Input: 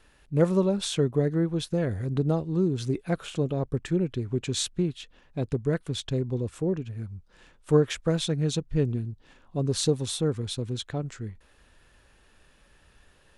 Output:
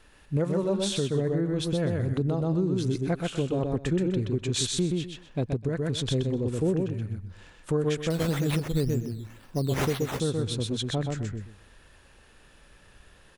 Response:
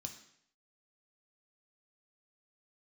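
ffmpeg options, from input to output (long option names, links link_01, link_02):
-filter_complex "[0:a]aecho=1:1:126|252|378:0.668|0.134|0.0267,asettb=1/sr,asplit=3[link_01][link_02][link_03];[link_01]atrim=end=8.104[link_04];[link_02]atrim=start=8.1:end=10.2,asetpts=PTS-STARTPTS,afade=type=in:duration=0.004:curve=qsin,afade=type=out:start_time=2.096:duration=0.004:curve=qsin,acrusher=samples=9:mix=1:aa=0.000001:lfo=1:lforange=5.4:lforate=2[link_05];[link_03]atrim=start=10.196[link_06];[link_04][link_05]acrossfade=duration=0.004:curve1=hsin:curve2=qsin[link_07];[link_07][link_06]acrossfade=duration=0.004:curve1=qsin:curve2=hsin,alimiter=limit=-19.5dB:level=0:latency=1:release=382,volume=2.5dB"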